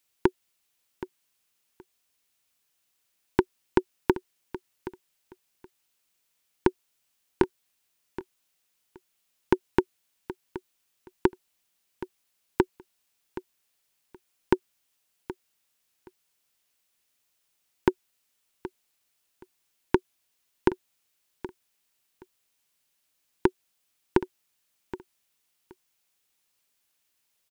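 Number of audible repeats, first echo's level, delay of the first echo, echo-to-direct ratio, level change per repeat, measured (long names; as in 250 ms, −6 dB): 2, −15.0 dB, 773 ms, −15.0 dB, −15.0 dB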